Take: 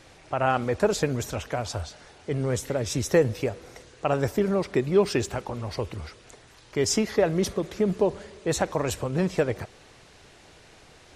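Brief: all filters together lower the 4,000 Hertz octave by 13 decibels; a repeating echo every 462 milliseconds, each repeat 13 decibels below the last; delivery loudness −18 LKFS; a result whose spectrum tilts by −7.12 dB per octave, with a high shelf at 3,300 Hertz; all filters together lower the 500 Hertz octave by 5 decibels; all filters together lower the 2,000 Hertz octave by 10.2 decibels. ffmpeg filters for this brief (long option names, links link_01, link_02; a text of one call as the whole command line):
ffmpeg -i in.wav -af "equalizer=frequency=500:width_type=o:gain=-5.5,equalizer=frequency=2000:width_type=o:gain=-9,highshelf=frequency=3300:gain=-9,equalizer=frequency=4000:width_type=o:gain=-8,aecho=1:1:462|924|1386:0.224|0.0493|0.0108,volume=12dB" out.wav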